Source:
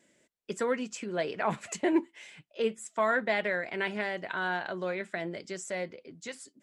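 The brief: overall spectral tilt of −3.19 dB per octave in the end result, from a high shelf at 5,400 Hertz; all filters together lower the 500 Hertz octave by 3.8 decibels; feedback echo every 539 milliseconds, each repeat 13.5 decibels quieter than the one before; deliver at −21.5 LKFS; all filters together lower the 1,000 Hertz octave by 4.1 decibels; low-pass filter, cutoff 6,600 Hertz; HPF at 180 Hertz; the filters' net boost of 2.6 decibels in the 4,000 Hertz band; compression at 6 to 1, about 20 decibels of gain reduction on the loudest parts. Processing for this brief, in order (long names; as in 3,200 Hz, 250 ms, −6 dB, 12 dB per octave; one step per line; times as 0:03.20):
high-pass filter 180 Hz
low-pass filter 6,600 Hz
parametric band 500 Hz −3.5 dB
parametric band 1,000 Hz −4.5 dB
parametric band 4,000 Hz +7 dB
high-shelf EQ 5,400 Hz −7 dB
downward compressor 6 to 1, threshold −45 dBFS
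repeating echo 539 ms, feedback 21%, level −13.5 dB
level +26.5 dB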